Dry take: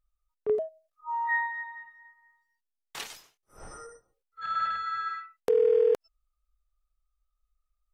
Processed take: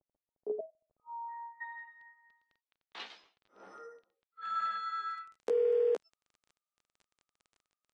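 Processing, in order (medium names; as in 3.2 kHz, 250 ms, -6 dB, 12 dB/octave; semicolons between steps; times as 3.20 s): steep high-pass 200 Hz 36 dB/octave; doubling 15 ms -3 dB; crackle 17 per s -42 dBFS; Chebyshev low-pass 700 Hz, order 3, from 1.60 s 4 kHz, from 4.42 s 8.5 kHz; trim -6.5 dB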